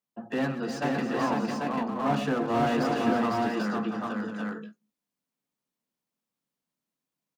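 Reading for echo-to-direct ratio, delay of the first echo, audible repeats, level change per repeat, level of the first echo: 1.0 dB, 131 ms, 5, no regular repeats, -12.5 dB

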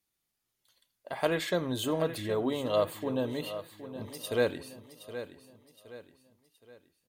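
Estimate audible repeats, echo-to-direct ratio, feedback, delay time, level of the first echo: 3, -11.5 dB, 40%, 769 ms, -12.0 dB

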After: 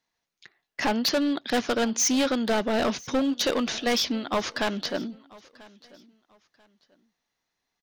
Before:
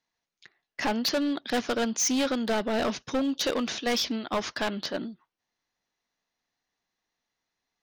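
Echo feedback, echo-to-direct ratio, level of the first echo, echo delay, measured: 27%, -22.5 dB, -23.0 dB, 989 ms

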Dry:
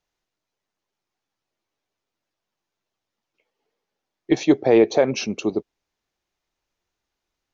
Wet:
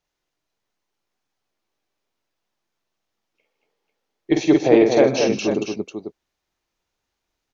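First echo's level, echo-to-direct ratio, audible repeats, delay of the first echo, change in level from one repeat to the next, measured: -5.5 dB, -1.0 dB, 5, 47 ms, no regular repeats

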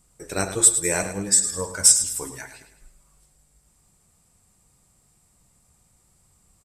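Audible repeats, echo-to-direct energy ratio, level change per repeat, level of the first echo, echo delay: 4, -9.5 dB, -7.5 dB, -10.5 dB, 105 ms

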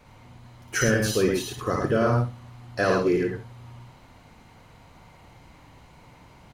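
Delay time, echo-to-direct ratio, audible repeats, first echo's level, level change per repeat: 58 ms, 0.5 dB, 3, -1.0 dB, no regular repeats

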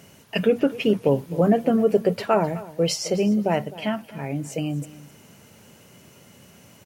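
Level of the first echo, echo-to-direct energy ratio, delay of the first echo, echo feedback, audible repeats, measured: -18.0 dB, -18.0 dB, 258 ms, 15%, 2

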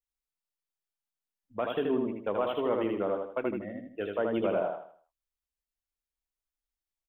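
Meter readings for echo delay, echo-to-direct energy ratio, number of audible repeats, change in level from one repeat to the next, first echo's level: 79 ms, -3.0 dB, 4, -9.0 dB, -3.5 dB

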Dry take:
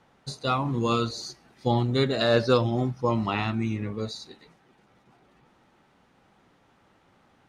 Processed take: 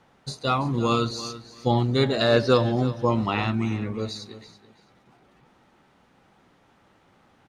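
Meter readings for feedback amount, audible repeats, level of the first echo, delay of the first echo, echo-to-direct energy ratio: 21%, 2, -15.0 dB, 333 ms, -15.0 dB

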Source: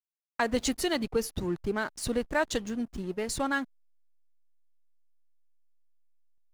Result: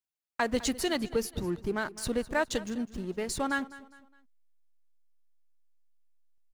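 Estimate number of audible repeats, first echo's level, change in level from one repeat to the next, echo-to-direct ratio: 3, -18.0 dB, -8.5 dB, -17.5 dB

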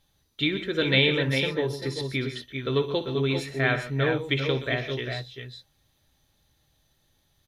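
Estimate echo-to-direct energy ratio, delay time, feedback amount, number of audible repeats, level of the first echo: -4.5 dB, 60 ms, no regular repeats, 3, -14.0 dB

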